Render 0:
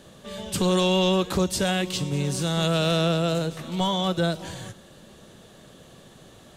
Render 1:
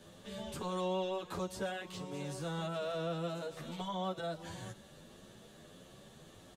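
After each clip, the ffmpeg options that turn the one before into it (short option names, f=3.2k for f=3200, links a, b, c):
-filter_complex "[0:a]acrossover=split=460|1600[a][b][c];[a]acompressor=threshold=-37dB:ratio=4[d];[b]acompressor=threshold=-31dB:ratio=4[e];[c]acompressor=threshold=-44dB:ratio=4[f];[d][e][f]amix=inputs=3:normalize=0,asplit=2[g][h];[h]adelay=9.7,afreqshift=1.6[i];[g][i]amix=inputs=2:normalize=1,volume=-4dB"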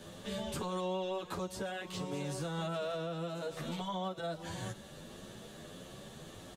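-af "alimiter=level_in=11.5dB:limit=-24dB:level=0:latency=1:release=498,volume=-11.5dB,volume=6.5dB"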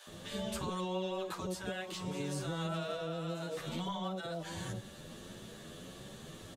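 -filter_complex "[0:a]acrossover=split=720[a][b];[a]adelay=70[c];[c][b]amix=inputs=2:normalize=0,volume=1dB"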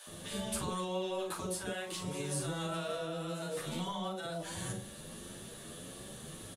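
-filter_complex "[0:a]equalizer=f=10k:w=2.2:g=13.5,asplit=2[a][b];[b]adelay=40,volume=-7dB[c];[a][c]amix=inputs=2:normalize=0"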